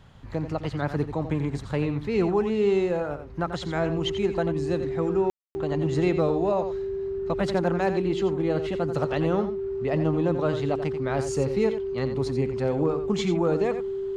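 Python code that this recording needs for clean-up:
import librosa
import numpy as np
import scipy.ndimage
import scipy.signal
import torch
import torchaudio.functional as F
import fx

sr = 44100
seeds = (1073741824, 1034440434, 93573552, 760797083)

y = fx.fix_declip(x, sr, threshold_db=-13.5)
y = fx.notch(y, sr, hz=390.0, q=30.0)
y = fx.fix_ambience(y, sr, seeds[0], print_start_s=0.0, print_end_s=0.5, start_s=5.3, end_s=5.55)
y = fx.fix_echo_inverse(y, sr, delay_ms=88, level_db=-10.0)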